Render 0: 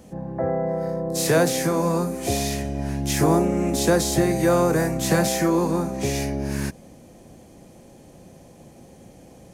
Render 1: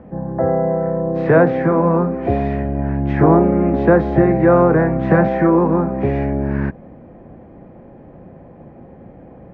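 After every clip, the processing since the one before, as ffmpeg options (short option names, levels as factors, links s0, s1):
-af "lowpass=f=1800:w=0.5412,lowpass=f=1800:w=1.3066,volume=2.24"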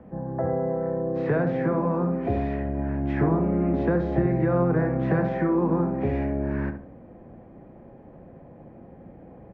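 -filter_complex "[0:a]acrossover=split=190|3000[s0][s1][s2];[s1]acompressor=threshold=0.158:ratio=6[s3];[s0][s3][s2]amix=inputs=3:normalize=0,asplit=2[s4][s5];[s5]adelay=69,lowpass=f=1400:p=1,volume=0.447,asplit=2[s6][s7];[s7]adelay=69,lowpass=f=1400:p=1,volume=0.38,asplit=2[s8][s9];[s9]adelay=69,lowpass=f=1400:p=1,volume=0.38,asplit=2[s10][s11];[s11]adelay=69,lowpass=f=1400:p=1,volume=0.38[s12];[s4][s6][s8][s10][s12]amix=inputs=5:normalize=0,volume=0.447"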